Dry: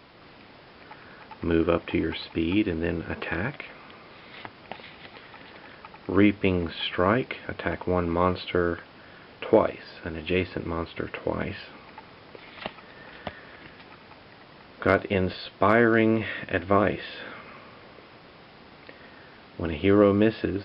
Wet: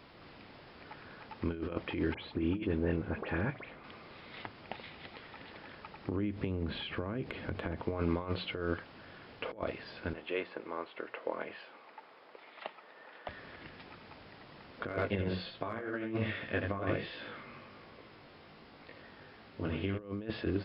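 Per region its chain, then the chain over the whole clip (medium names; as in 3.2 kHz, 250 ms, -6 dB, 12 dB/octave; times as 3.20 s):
2.14–3.84 s: treble shelf 2.6 kHz -12 dB + phase dispersion highs, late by 78 ms, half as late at 2.8 kHz
6.05–7.83 s: compression 10:1, threshold -33 dBFS + bass shelf 480 Hz +9.5 dB
10.13–13.29 s: high-pass 520 Hz + treble shelf 2.4 kHz -10.5 dB
14.89–19.99 s: delay 82 ms -6 dB + chorus 1.3 Hz, delay 17.5 ms, depth 3.9 ms
whole clip: compressor with a negative ratio -26 dBFS, ratio -0.5; bass shelf 170 Hz +4 dB; hum notches 60/120/180 Hz; trim -7.5 dB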